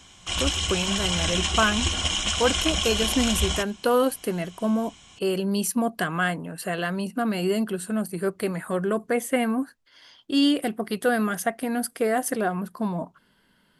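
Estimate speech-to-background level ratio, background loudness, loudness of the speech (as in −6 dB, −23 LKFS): −1.5 dB, −24.5 LKFS, −26.0 LKFS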